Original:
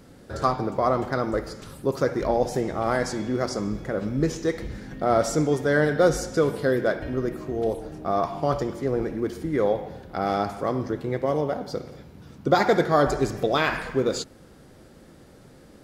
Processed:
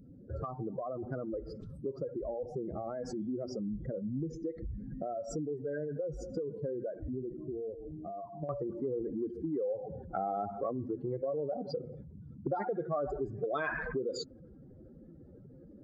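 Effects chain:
expanding power law on the bin magnitudes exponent 2.5
downward compressor 6 to 1, threshold −29 dBFS, peak gain reduction 14 dB
parametric band 1,400 Hz −6.5 dB 2.2 octaves, from 0:06.95 −14 dB, from 0:08.49 +3 dB
level −3.5 dB

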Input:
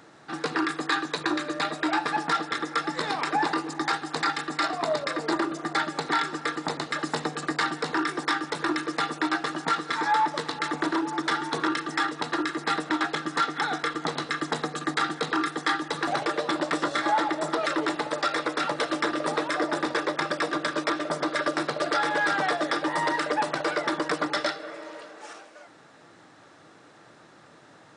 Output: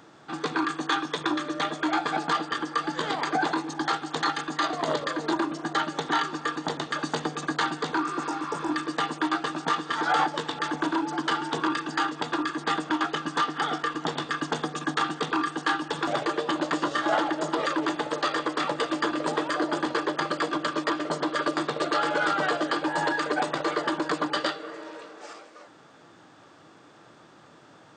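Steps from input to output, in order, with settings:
healed spectral selection 0:08.05–0:08.68, 1,000–5,500 Hz
formants moved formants −2 semitones

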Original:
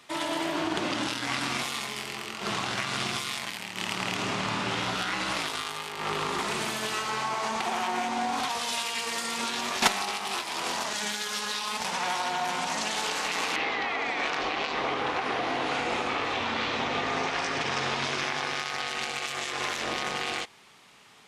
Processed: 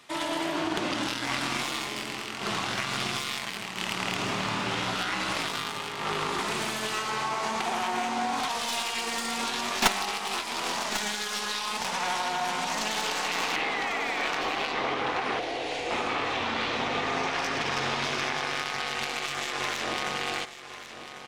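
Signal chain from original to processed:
stylus tracing distortion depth 0.037 ms
0:15.39–0:15.91: phaser with its sweep stopped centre 490 Hz, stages 4
single-tap delay 1,096 ms −12 dB

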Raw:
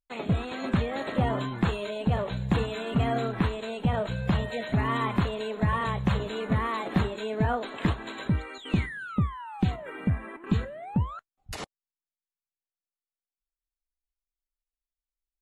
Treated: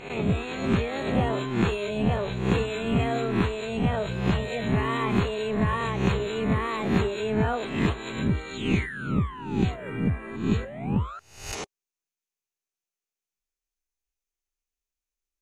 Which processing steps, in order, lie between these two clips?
peak hold with a rise ahead of every peak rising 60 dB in 0.59 s
thirty-one-band graphic EQ 400 Hz +8 dB, 2,500 Hz +6 dB, 6,300 Hz +10 dB
level −1.5 dB

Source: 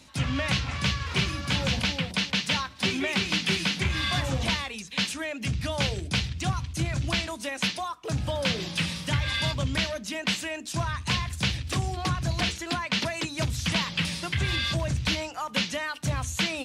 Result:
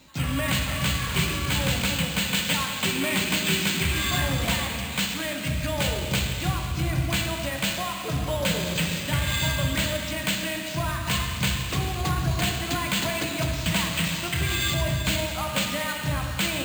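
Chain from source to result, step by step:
dense smooth reverb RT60 3 s, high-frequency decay 1×, DRR 1 dB
bad sample-rate conversion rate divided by 4×, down filtered, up hold

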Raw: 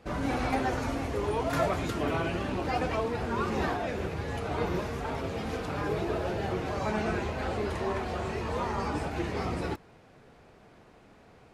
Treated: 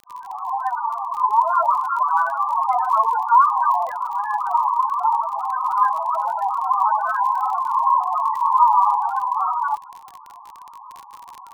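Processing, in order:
fade in at the beginning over 1.88 s
mid-hump overdrive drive 21 dB, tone 1,300 Hz, clips at −17 dBFS
high-pass with resonance 1,000 Hz, resonance Q 4.8
spectral peaks only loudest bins 8
surface crackle 35 per second −33 dBFS
level +5 dB

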